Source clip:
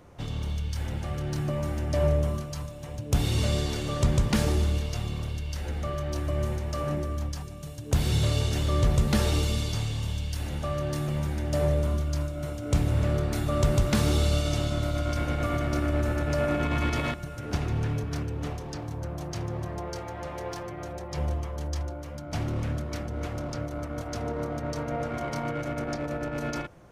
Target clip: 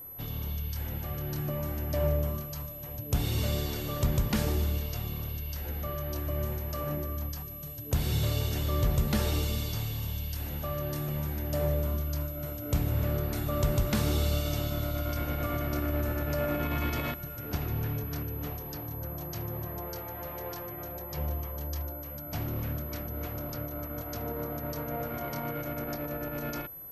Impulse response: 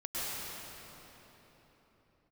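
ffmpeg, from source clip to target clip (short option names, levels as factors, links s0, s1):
-af "aeval=exprs='val(0)+0.0126*sin(2*PI*12000*n/s)':c=same,volume=0.631"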